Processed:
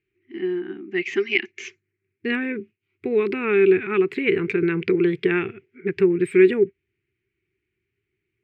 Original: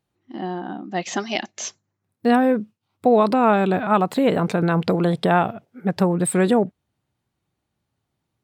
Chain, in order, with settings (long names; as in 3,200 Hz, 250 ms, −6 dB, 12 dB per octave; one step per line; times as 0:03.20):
drawn EQ curve 100 Hz 0 dB, 190 Hz −6 dB, 270 Hz −5 dB, 390 Hz +14 dB, 590 Hz −27 dB, 1,000 Hz −15 dB, 2,300 Hz +15 dB, 3,700 Hz −8 dB, 6,700 Hz −13 dB, 11,000 Hz −22 dB
level −3 dB